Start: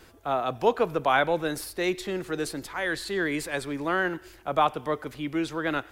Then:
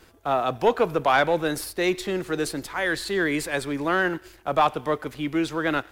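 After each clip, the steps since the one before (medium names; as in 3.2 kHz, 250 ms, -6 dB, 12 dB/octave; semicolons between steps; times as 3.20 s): waveshaping leveller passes 1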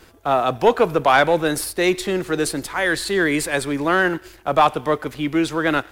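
dynamic bell 9.2 kHz, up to +4 dB, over -49 dBFS, Q 1.8; trim +5 dB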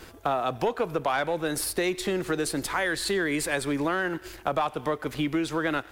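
compression 6:1, threshold -27 dBFS, peak gain reduction 16 dB; trim +2.5 dB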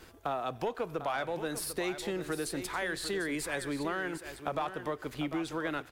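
delay 747 ms -10.5 dB; trim -7.5 dB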